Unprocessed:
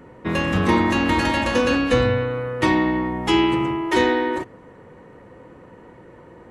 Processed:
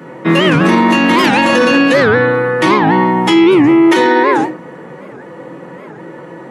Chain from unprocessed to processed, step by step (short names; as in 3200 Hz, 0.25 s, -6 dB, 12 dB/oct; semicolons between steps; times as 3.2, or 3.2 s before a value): HPF 150 Hz 24 dB/oct; reverb RT60 0.35 s, pre-delay 3 ms, DRR -1 dB; maximiser +12 dB; record warp 78 rpm, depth 250 cents; gain -1 dB